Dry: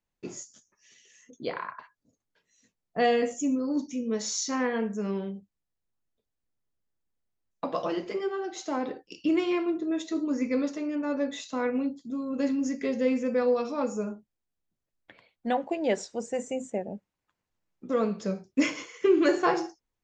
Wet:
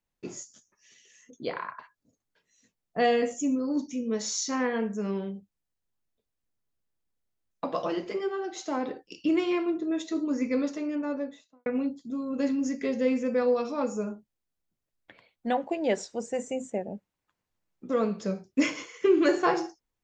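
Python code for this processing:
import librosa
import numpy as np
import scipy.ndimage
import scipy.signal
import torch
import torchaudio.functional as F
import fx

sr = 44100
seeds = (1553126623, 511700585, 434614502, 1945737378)

y = fx.studio_fade_out(x, sr, start_s=10.9, length_s=0.76)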